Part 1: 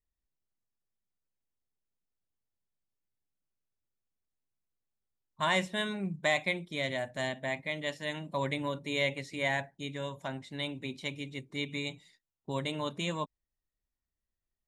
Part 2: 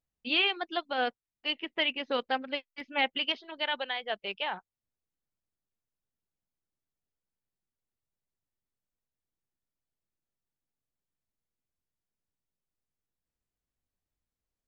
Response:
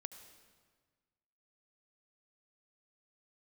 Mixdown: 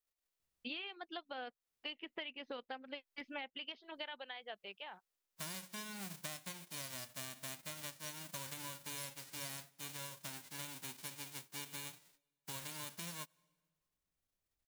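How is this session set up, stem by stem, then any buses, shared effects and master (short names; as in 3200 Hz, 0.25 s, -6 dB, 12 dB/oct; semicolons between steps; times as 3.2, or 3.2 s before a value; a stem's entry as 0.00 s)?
-7.0 dB, 0.00 s, send -19 dB, spectral whitening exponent 0.1
-2.5 dB, 0.40 s, no send, auto duck -21 dB, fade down 1.35 s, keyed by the first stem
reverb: on, RT60 1.5 s, pre-delay 66 ms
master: compressor 12:1, threshold -42 dBFS, peak gain reduction 18 dB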